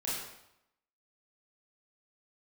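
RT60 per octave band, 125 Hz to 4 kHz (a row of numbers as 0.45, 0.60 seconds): 0.85, 0.80, 0.80, 0.85, 0.75, 0.70 seconds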